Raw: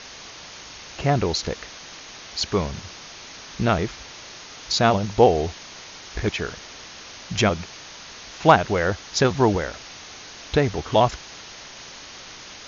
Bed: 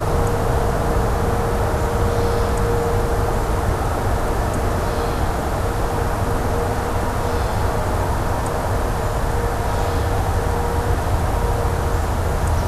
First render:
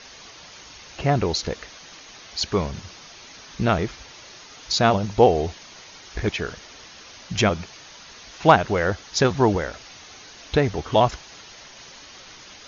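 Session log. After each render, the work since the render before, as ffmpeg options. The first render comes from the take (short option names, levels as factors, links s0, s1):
-af "afftdn=nr=6:nf=-41"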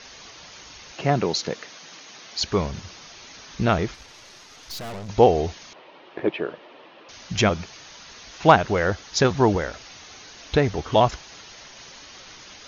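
-filter_complex "[0:a]asettb=1/sr,asplit=3[s0][s1][s2];[s0]atrim=end=0.924[s3];[s1]atrim=start=0.92:end=2.41,asetpts=PTS-STARTPTS,afade=t=in:d=0.004:c=qsin,afade=t=out:st=1.486:d=0.004:c=qsin,highpass=f=130:w=0.5412,highpass=f=130:w=1.3066[s4];[s2]atrim=start=2.406[s5];[s3][s4]acrossfade=d=0.004:c1=hsin:c2=qsin[s6];[s6][s5]acrossfade=d=0.004:c1=qsin:c2=hsin,asettb=1/sr,asplit=3[s7][s8][s9];[s7]atrim=end=3.944[s10];[s8]atrim=start=3.94:end=5.09,asetpts=PTS-STARTPTS,afade=t=in:d=0.004:c=qsin,afade=t=out:st=1.146:d=0.004:c=qsin,aeval=exprs='(tanh(44.7*val(0)+0.6)-tanh(0.6))/44.7':c=same[s11];[s9]atrim=start=5.086[s12];[s10][s11]acrossfade=d=0.004:c1=hsin:c2=qsin[s13];[s13][s12]acrossfade=d=0.004:c1=qsin:c2=hsin,asettb=1/sr,asplit=3[s14][s15][s16];[s14]atrim=end=5.734[s17];[s15]atrim=start=5.73:end=7.09,asetpts=PTS-STARTPTS,afade=t=in:d=0.004:c=qsin,afade=t=out:st=1.356:d=0.004:c=qsin,highpass=f=170:w=0.5412,highpass=f=170:w=1.3066,equalizer=f=200:t=q:w=4:g=-7,equalizer=f=340:t=q:w=4:g=6,equalizer=f=570:t=q:w=4:g=7,equalizer=f=950:t=q:w=4:g=3,equalizer=f=1500:t=q:w=4:g=-6,equalizer=f=2100:t=q:w=4:g=-6,lowpass=f=2800:w=0.5412,lowpass=f=2800:w=1.3066[s18];[s16]atrim=start=7.086[s19];[s17][s18]acrossfade=d=0.004:c1=hsin:c2=qsin[s20];[s20][s19]acrossfade=d=0.004:c1=qsin:c2=hsin"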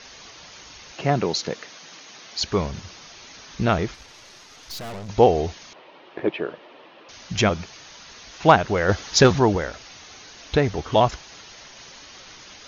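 -filter_complex "[0:a]asplit=3[s0][s1][s2];[s0]afade=t=out:st=8.88:d=0.02[s3];[s1]acontrast=51,afade=t=in:st=8.88:d=0.02,afade=t=out:st=9.38:d=0.02[s4];[s2]afade=t=in:st=9.38:d=0.02[s5];[s3][s4][s5]amix=inputs=3:normalize=0"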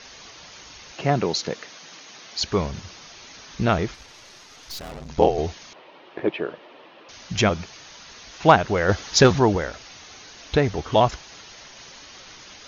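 -filter_complex "[0:a]asettb=1/sr,asplit=3[s0][s1][s2];[s0]atrim=end=4.794[s3];[s1]atrim=start=4.79:end=5.38,asetpts=PTS-STARTPTS,afade=t=in:d=0.004:c=qsin,afade=t=out:st=0.586:d=0.004:c=qsin,aeval=exprs='val(0)*sin(2*PI*41*n/s)':c=same[s4];[s2]atrim=start=5.376[s5];[s3][s4]acrossfade=d=0.004:c1=hsin:c2=qsin[s6];[s6][s5]acrossfade=d=0.004:c1=qsin:c2=hsin"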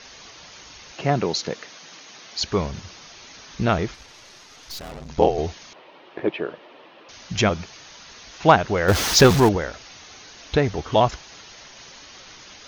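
-filter_complex "[0:a]asettb=1/sr,asplit=3[s0][s1][s2];[s0]atrim=end=8.884[s3];[s1]atrim=start=8.88:end=9.49,asetpts=PTS-STARTPTS,afade=t=in:d=0.004:c=qsin,afade=t=out:st=0.606:d=0.004:c=qsin,aeval=exprs='val(0)+0.5*0.112*sgn(val(0))':c=same[s4];[s2]atrim=start=9.486[s5];[s3][s4]acrossfade=d=0.004:c1=hsin:c2=qsin[s6];[s6][s5]acrossfade=d=0.004:c1=qsin:c2=hsin"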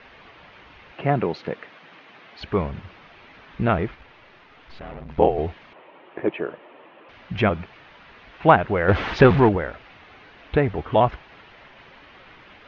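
-af "lowpass=f=2700:w=0.5412,lowpass=f=2700:w=1.3066"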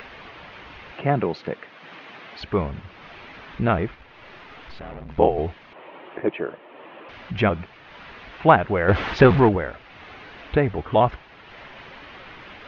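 -af "acompressor=mode=upward:threshold=0.02:ratio=2.5"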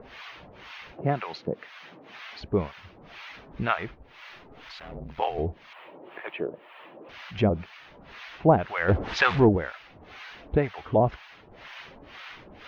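-filter_complex "[0:a]crystalizer=i=2:c=0,acrossover=split=760[s0][s1];[s0]aeval=exprs='val(0)*(1-1/2+1/2*cos(2*PI*2*n/s))':c=same[s2];[s1]aeval=exprs='val(0)*(1-1/2-1/2*cos(2*PI*2*n/s))':c=same[s3];[s2][s3]amix=inputs=2:normalize=0"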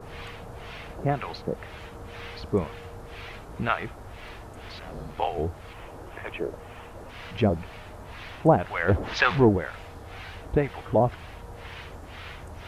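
-filter_complex "[1:a]volume=0.0668[s0];[0:a][s0]amix=inputs=2:normalize=0"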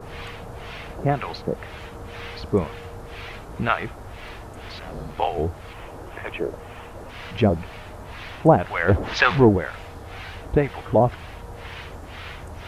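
-af "volume=1.58"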